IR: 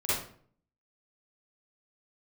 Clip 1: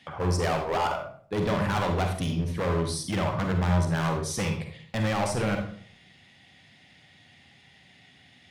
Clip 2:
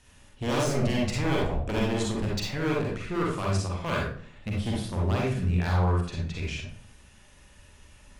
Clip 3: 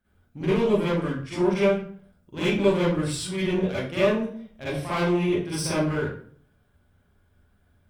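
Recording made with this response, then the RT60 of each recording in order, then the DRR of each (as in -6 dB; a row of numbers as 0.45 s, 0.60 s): 3; 0.55 s, 0.55 s, 0.50 s; 3.0 dB, -4.0 dB, -12.0 dB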